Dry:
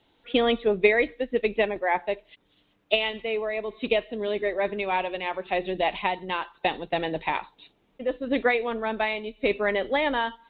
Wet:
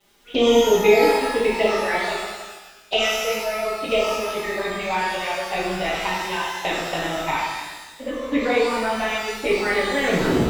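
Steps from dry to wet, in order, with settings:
turntable brake at the end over 0.53 s
surface crackle 540 per second −48 dBFS
flanger swept by the level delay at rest 5.1 ms, full sweep at −18.5 dBFS
reverb with rising layers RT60 1.2 s, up +12 semitones, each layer −8 dB, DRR −6.5 dB

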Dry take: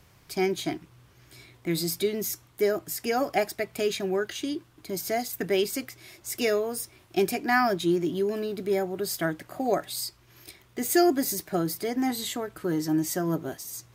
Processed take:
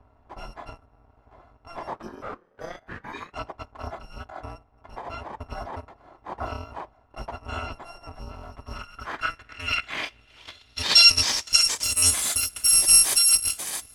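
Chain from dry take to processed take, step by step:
samples in bit-reversed order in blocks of 256 samples
low-pass filter sweep 910 Hz → 10,000 Hz, 0:08.39–0:12.29
0:01.93–0:03.31: ring modulation 250 Hz → 1,200 Hz
level +6 dB

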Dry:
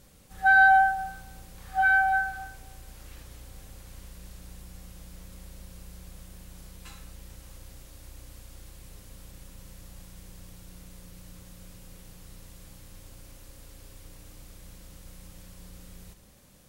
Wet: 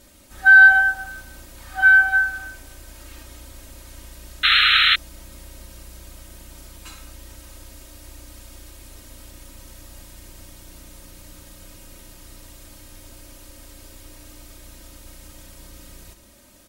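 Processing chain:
low-shelf EQ 76 Hz −8 dB
comb filter 3.2 ms, depth 99%
sound drawn into the spectrogram noise, 0:04.43–0:04.96, 1,200–4,200 Hz −20 dBFS
level +4.5 dB

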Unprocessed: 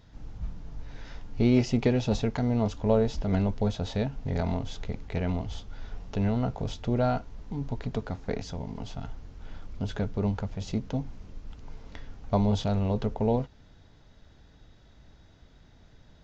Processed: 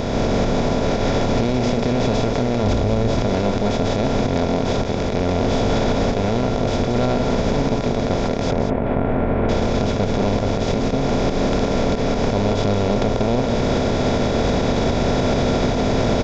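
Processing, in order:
compressor on every frequency bin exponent 0.2
camcorder AGC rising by 19 dB per second
0:02.63–0:03.16: parametric band 61 Hz +9.5 dB 2.2 octaves
0:08.51–0:09.49: low-pass filter 2,200 Hz 24 dB per octave
on a send: single-tap delay 189 ms −7 dB
on the sum: brickwall limiter −9.5 dBFS, peak gain reduction 11.5 dB

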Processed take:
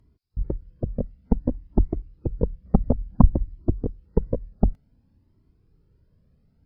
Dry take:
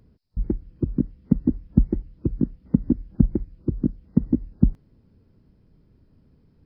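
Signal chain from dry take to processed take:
0:02.43–0:03.71: low-shelf EQ 170 Hz +8 dB
harmonic generator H 6 −11 dB, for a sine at 3 dBFS
flanger whose copies keep moving one way rising 0.56 Hz
level −1 dB

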